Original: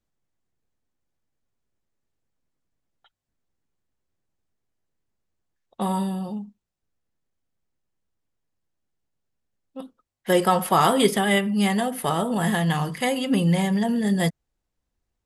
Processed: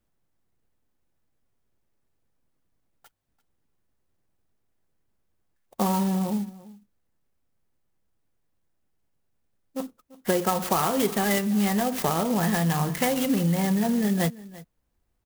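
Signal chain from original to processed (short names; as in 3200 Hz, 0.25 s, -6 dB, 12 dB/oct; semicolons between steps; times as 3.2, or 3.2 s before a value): compressor, threshold -26 dBFS, peak gain reduction 12.5 dB; on a send: echo 0.341 s -19.5 dB; on the sum: clock jitter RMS 0.066 ms; gain +5 dB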